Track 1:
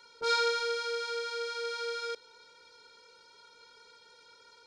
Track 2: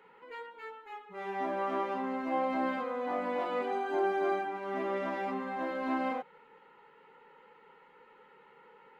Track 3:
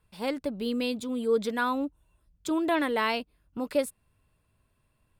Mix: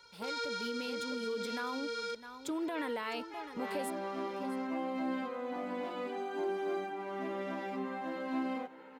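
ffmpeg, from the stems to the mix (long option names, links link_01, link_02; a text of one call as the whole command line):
ffmpeg -i stem1.wav -i stem2.wav -i stem3.wav -filter_complex "[0:a]volume=-2dB[link_01];[1:a]acrossover=split=350|3000[link_02][link_03][link_04];[link_03]acompressor=threshold=-41dB:ratio=6[link_05];[link_02][link_05][link_04]amix=inputs=3:normalize=0,adelay=2450,volume=1dB,asplit=2[link_06][link_07];[link_07]volume=-16dB[link_08];[2:a]volume=-5.5dB,asplit=2[link_09][link_10];[link_10]volume=-16dB[link_11];[link_01][link_09]amix=inputs=2:normalize=0,alimiter=level_in=5dB:limit=-24dB:level=0:latency=1:release=53,volume=-5dB,volume=0dB[link_12];[link_08][link_11]amix=inputs=2:normalize=0,aecho=0:1:656:1[link_13];[link_06][link_12][link_13]amix=inputs=3:normalize=0,lowshelf=frequency=71:gain=-10.5" out.wav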